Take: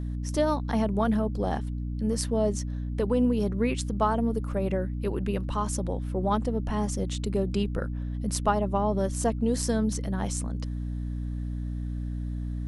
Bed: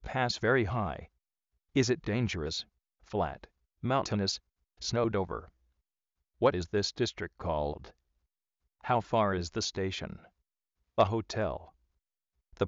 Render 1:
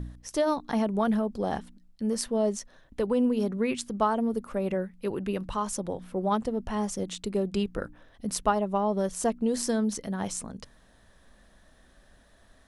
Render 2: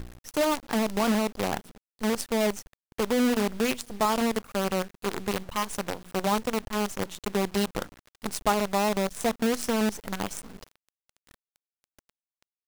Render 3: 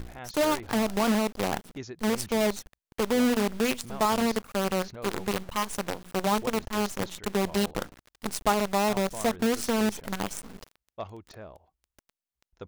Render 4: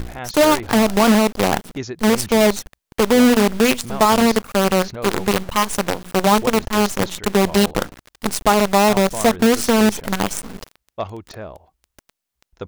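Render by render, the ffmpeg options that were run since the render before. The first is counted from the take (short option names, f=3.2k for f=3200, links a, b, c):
-af "bandreject=f=60:t=h:w=4,bandreject=f=120:t=h:w=4,bandreject=f=180:t=h:w=4,bandreject=f=240:t=h:w=4,bandreject=f=300:t=h:w=4"
-af "acrusher=bits=5:dc=4:mix=0:aa=0.000001"
-filter_complex "[1:a]volume=-12.5dB[a];[0:a][a]amix=inputs=2:normalize=0"
-af "volume=11dB,alimiter=limit=-3dB:level=0:latency=1"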